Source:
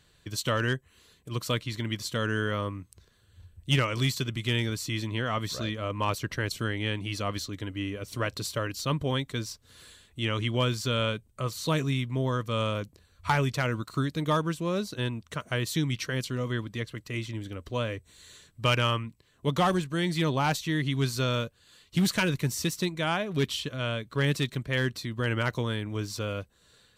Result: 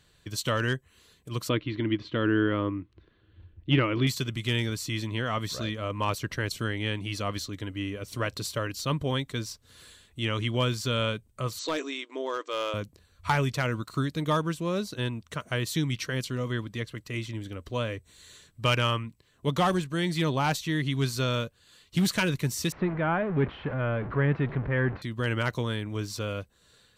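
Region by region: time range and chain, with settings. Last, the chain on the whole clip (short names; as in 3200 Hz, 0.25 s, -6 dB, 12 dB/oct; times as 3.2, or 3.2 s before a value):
1.49–4.07 LPF 3300 Hz 24 dB/oct + bell 320 Hz +13 dB 0.43 oct
11.59–12.74 brick-wall FIR band-pass 270–8200 Hz + hard clip -23 dBFS
22.72–25.02 zero-crossing step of -30 dBFS + LPF 1900 Hz 24 dB/oct
whole clip: dry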